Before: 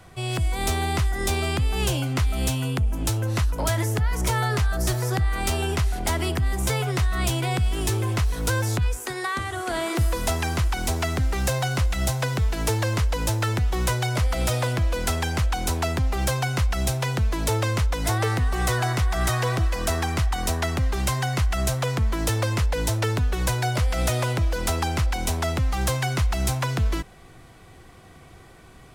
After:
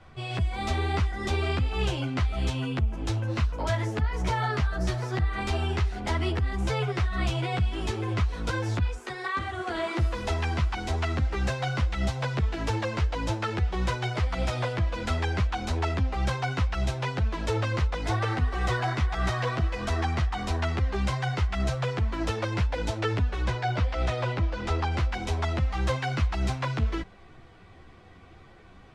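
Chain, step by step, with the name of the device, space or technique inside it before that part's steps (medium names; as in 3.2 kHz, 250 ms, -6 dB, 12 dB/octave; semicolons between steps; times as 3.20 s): 23.41–24.92 s: distance through air 60 m; string-machine ensemble chorus (three-phase chorus; low-pass 4 kHz 12 dB/octave)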